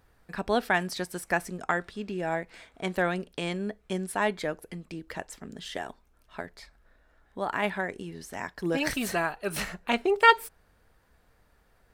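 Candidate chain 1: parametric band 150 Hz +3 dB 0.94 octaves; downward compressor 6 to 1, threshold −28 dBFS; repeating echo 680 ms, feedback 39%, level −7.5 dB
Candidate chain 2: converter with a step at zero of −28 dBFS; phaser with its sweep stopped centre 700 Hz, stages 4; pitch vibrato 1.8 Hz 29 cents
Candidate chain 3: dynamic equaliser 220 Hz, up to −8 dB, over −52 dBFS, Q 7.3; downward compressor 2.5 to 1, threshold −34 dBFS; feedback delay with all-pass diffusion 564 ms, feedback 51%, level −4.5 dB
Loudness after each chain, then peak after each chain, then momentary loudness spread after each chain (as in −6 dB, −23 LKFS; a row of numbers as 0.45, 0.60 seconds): −34.5, −31.5, −36.5 LKFS; −14.5, −8.5, −17.0 dBFS; 14, 9, 9 LU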